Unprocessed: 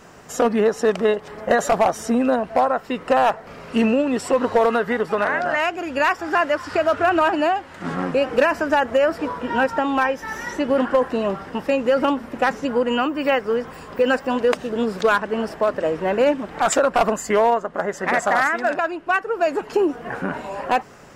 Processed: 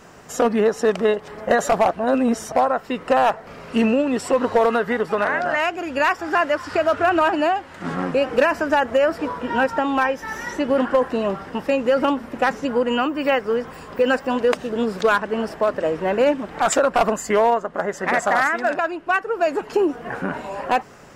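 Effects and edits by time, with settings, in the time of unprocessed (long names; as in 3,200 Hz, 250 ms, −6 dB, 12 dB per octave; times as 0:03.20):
0:01.91–0:02.52: reverse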